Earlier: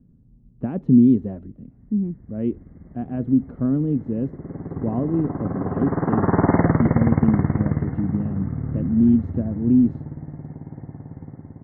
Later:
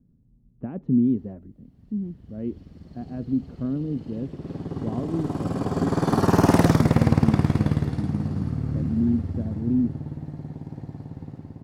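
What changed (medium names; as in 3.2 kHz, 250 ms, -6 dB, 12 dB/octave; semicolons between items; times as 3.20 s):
speech -6.5 dB; background: remove brick-wall FIR low-pass 2.2 kHz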